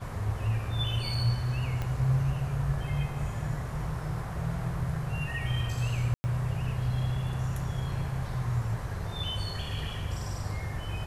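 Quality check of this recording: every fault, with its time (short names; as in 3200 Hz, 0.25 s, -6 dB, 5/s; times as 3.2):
1.82 pop -20 dBFS
6.14–6.24 gap 0.1 s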